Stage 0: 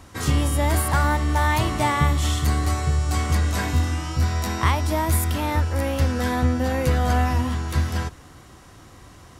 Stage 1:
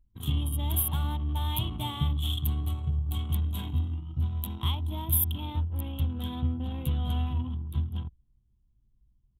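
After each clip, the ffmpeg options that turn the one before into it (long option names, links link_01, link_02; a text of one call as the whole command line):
ffmpeg -i in.wav -af "anlmdn=251,firequalizer=gain_entry='entry(170,0);entry(540,-16);entry(910,-7);entry(1800,-22);entry(3300,11);entry(4800,-25);entry(12000,14)':delay=0.05:min_phase=1,volume=-7dB" out.wav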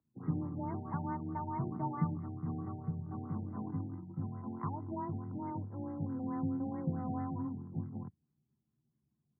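ffmpeg -i in.wav -af "afreqshift=18,highpass=frequency=150:width=0.5412,highpass=frequency=150:width=1.3066,afftfilt=real='re*lt(b*sr/1024,850*pow(2200/850,0.5+0.5*sin(2*PI*4.6*pts/sr)))':imag='im*lt(b*sr/1024,850*pow(2200/850,0.5+0.5*sin(2*PI*4.6*pts/sr)))':win_size=1024:overlap=0.75" out.wav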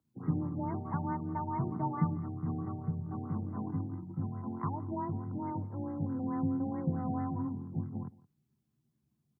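ffmpeg -i in.wav -filter_complex "[0:a]asplit=2[link_01][link_02];[link_02]adelay=169.1,volume=-21dB,highshelf=frequency=4000:gain=-3.8[link_03];[link_01][link_03]amix=inputs=2:normalize=0,volume=3dB" out.wav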